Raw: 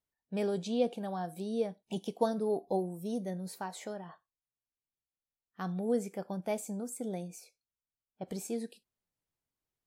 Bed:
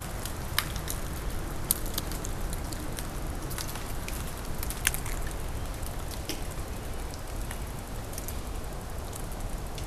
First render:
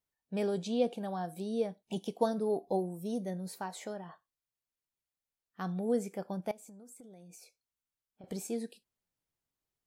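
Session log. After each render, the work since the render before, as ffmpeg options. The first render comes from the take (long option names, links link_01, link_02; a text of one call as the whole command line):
ffmpeg -i in.wav -filter_complex "[0:a]asettb=1/sr,asplit=3[link_01][link_02][link_03];[link_01]atrim=end=6.514[link_04];[link_02]atrim=start=6.51:end=8.24,asetpts=PTS-STARTPTS,afade=type=in:duration=0.004:curve=qsin,afade=type=out:start_time=1.726:duration=0.004:curve=qsin,acompressor=threshold=-49dB:ratio=16:attack=3.2:release=140:knee=1:detection=peak[link_05];[link_03]atrim=start=8.236[link_06];[link_04][link_05]acrossfade=duration=0.004:curve1=hsin:curve2=qsin[link_07];[link_07][link_06]acrossfade=duration=0.004:curve1=qsin:curve2=hsin" out.wav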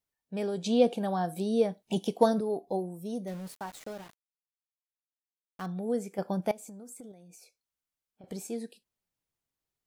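ffmpeg -i in.wav -filter_complex "[0:a]asettb=1/sr,asplit=3[link_01][link_02][link_03];[link_01]atrim=end=0.644[link_04];[link_02]atrim=start=0.64:end=2.41,asetpts=PTS-STARTPTS,afade=type=in:duration=0.004:curve=qsin,afade=type=out:start_time=1.766:duration=0.004:curve=qsin,acontrast=74[link_05];[link_03]atrim=start=2.406[link_06];[link_04][link_05]acrossfade=duration=0.004:curve1=hsin:curve2=qsin[link_07];[link_07][link_06]acrossfade=duration=0.004:curve1=qsin:curve2=hsin,asettb=1/sr,asplit=3[link_08][link_09][link_10];[link_08]atrim=end=3.274[link_11];[link_09]atrim=start=3.27:end=5.66,asetpts=PTS-STARTPTS,afade=type=in:duration=0.004:curve=qsin,afade=type=out:start_time=2.386:duration=0.004:curve=qsin,aeval=exprs='val(0)*gte(abs(val(0)),0.00596)':channel_layout=same[link_12];[link_10]atrim=start=5.656[link_13];[link_11][link_12]acrossfade=duration=0.004:curve1=hsin:curve2=qsin[link_14];[link_14][link_13]acrossfade=duration=0.004:curve1=qsin:curve2=hsin,asettb=1/sr,asplit=3[link_15][link_16][link_17];[link_15]atrim=end=6.184[link_18];[link_16]atrim=start=6.18:end=7.12,asetpts=PTS-STARTPTS,afade=type=in:duration=0.004:curve=qsin,afade=type=out:start_time=0.936:duration=0.004:curve=qsin,acontrast=69[link_19];[link_17]atrim=start=7.116[link_20];[link_18][link_19]acrossfade=duration=0.004:curve1=hsin:curve2=qsin[link_21];[link_21][link_20]acrossfade=duration=0.004:curve1=qsin:curve2=hsin" out.wav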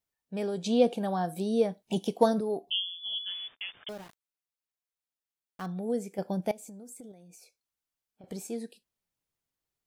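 ffmpeg -i in.wav -filter_complex "[0:a]asettb=1/sr,asplit=3[link_01][link_02][link_03];[link_01]atrim=end=2.704[link_04];[link_02]atrim=start=2.7:end=3.89,asetpts=PTS-STARTPTS,afade=type=in:duration=0.004:curve=qsin,afade=type=out:start_time=1.186:duration=0.004:curve=qsin,lowpass=frequency=3100:width_type=q:width=0.5098,lowpass=frequency=3100:width_type=q:width=0.6013,lowpass=frequency=3100:width_type=q:width=0.9,lowpass=frequency=3100:width_type=q:width=2.563,afreqshift=-3600[link_05];[link_03]atrim=start=3.886[link_06];[link_04][link_05]acrossfade=duration=0.004:curve1=hsin:curve2=qsin[link_07];[link_07][link_06]acrossfade=duration=0.004:curve1=qsin:curve2=hsin,asettb=1/sr,asplit=3[link_08][link_09][link_10];[link_08]atrim=end=5.914[link_11];[link_09]atrim=start=5.91:end=7.09,asetpts=PTS-STARTPTS,afade=type=in:duration=0.004:curve=qsin,afade=type=out:start_time=1.176:duration=0.004:curve=qsin,equalizer=frequency=1200:width_type=o:width=0.73:gain=-7.5[link_12];[link_10]atrim=start=7.086[link_13];[link_11][link_12]acrossfade=duration=0.004:curve1=hsin:curve2=qsin[link_14];[link_14][link_13]acrossfade=duration=0.004:curve1=qsin:curve2=hsin" out.wav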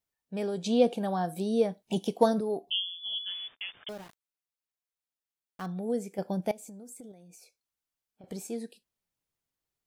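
ffmpeg -i in.wav -af anull out.wav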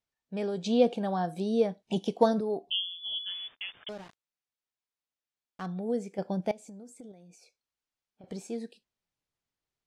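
ffmpeg -i in.wav -af "lowpass=6300" out.wav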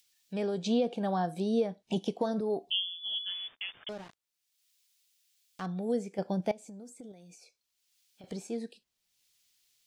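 ffmpeg -i in.wav -filter_complex "[0:a]acrossover=split=610|2600[link_01][link_02][link_03];[link_03]acompressor=mode=upward:threshold=-52dB:ratio=2.5[link_04];[link_01][link_02][link_04]amix=inputs=3:normalize=0,alimiter=limit=-19.5dB:level=0:latency=1:release=235" out.wav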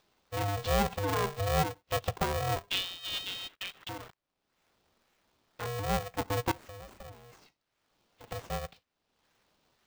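ffmpeg -i in.wav -filter_complex "[0:a]acrossover=split=470|5000[link_01][link_02][link_03];[link_03]acrusher=samples=18:mix=1:aa=0.000001:lfo=1:lforange=18:lforate=1.9[link_04];[link_01][link_02][link_04]amix=inputs=3:normalize=0,aeval=exprs='val(0)*sgn(sin(2*PI*300*n/s))':channel_layout=same" out.wav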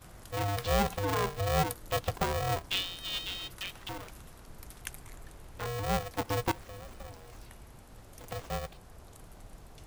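ffmpeg -i in.wav -i bed.wav -filter_complex "[1:a]volume=-15dB[link_01];[0:a][link_01]amix=inputs=2:normalize=0" out.wav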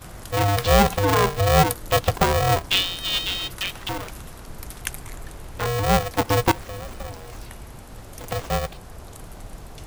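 ffmpeg -i in.wav -af "volume=11.5dB" out.wav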